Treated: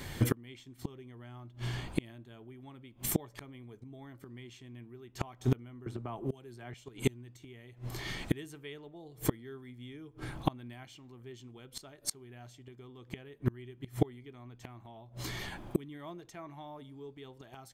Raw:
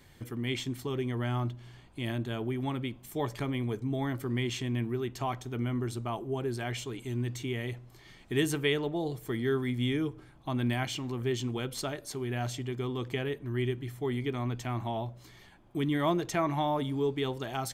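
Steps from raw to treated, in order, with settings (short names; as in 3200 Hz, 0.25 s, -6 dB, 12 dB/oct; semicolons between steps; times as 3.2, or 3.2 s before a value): flipped gate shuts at -29 dBFS, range -32 dB; 5.86–6.74 three-band squash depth 100%; gain +14.5 dB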